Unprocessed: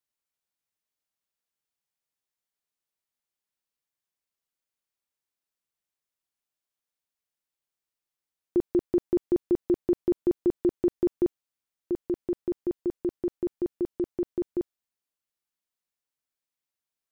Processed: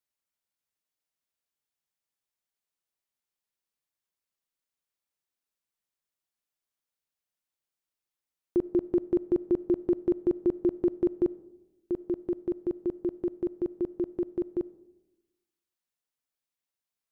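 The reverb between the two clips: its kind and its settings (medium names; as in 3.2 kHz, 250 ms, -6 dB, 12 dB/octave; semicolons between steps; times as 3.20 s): algorithmic reverb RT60 1 s, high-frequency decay 0.3×, pre-delay 15 ms, DRR 18.5 dB; trim -1.5 dB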